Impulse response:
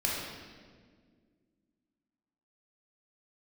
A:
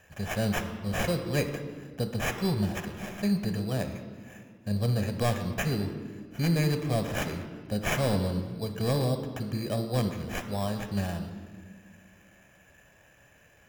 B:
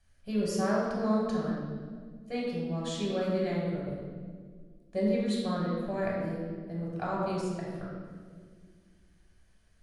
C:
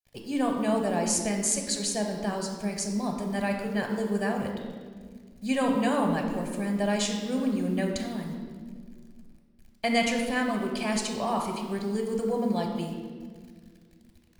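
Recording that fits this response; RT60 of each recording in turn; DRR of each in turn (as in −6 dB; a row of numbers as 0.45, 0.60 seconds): B; 1.9, 1.8, 1.8 seconds; 7.0, −5.0, 2.5 decibels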